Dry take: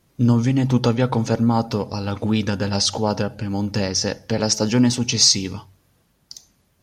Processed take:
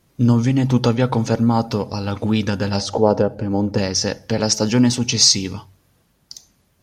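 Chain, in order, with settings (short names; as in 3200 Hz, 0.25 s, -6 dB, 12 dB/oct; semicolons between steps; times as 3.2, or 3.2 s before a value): 2.8–3.78 EQ curve 170 Hz 0 dB, 470 Hz +8 dB, 2800 Hz -9 dB; gain +1.5 dB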